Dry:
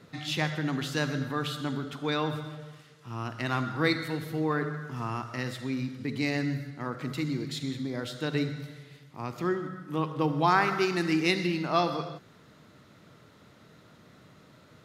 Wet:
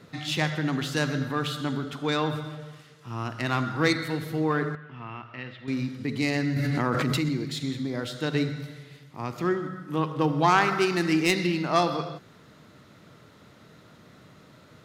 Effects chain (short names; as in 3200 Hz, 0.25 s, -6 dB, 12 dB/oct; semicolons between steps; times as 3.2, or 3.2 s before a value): self-modulated delay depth 0.072 ms; 4.75–5.68 ladder low-pass 3300 Hz, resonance 50%; 6.56–7.29 fast leveller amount 100%; gain +3 dB